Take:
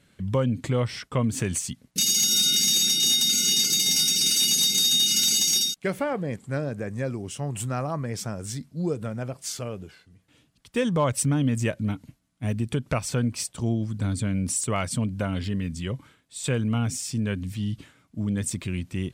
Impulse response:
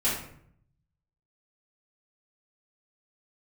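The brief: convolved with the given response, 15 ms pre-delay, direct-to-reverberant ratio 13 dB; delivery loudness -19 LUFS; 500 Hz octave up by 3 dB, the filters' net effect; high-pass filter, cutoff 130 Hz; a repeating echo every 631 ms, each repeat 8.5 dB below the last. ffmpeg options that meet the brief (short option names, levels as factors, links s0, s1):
-filter_complex "[0:a]highpass=130,equalizer=f=500:t=o:g=3.5,aecho=1:1:631|1262|1893|2524:0.376|0.143|0.0543|0.0206,asplit=2[s0][s1];[1:a]atrim=start_sample=2205,adelay=15[s2];[s1][s2]afir=irnorm=-1:irlink=0,volume=0.0668[s3];[s0][s3]amix=inputs=2:normalize=0,volume=1.58"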